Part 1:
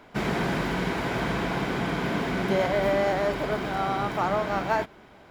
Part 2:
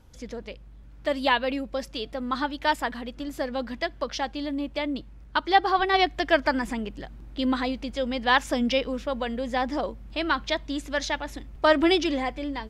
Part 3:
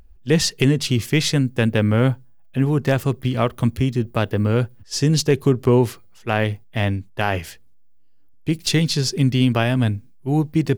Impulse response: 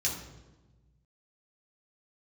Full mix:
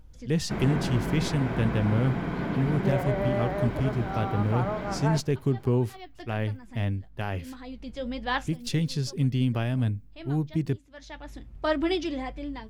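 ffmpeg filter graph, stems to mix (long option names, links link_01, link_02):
-filter_complex "[0:a]acrossover=split=2600[link_01][link_02];[link_02]acompressor=threshold=-49dB:ratio=4:attack=1:release=60[link_03];[link_01][link_03]amix=inputs=2:normalize=0,adelay=350,volume=-6.5dB[link_04];[1:a]flanger=delay=6.3:depth=3.1:regen=-64:speed=1.7:shape=sinusoidal,volume=-4dB[link_05];[2:a]volume=-13.5dB,asplit=2[link_06][link_07];[link_07]apad=whole_len=559679[link_08];[link_05][link_08]sidechaincompress=threshold=-49dB:ratio=8:attack=30:release=446[link_09];[link_04][link_09][link_06]amix=inputs=3:normalize=0,lowshelf=frequency=250:gain=9"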